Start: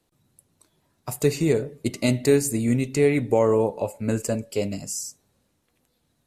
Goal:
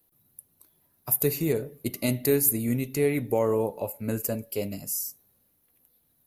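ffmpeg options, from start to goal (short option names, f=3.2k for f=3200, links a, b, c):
-af "aexciter=amount=14.1:drive=4.7:freq=11k,volume=-5dB"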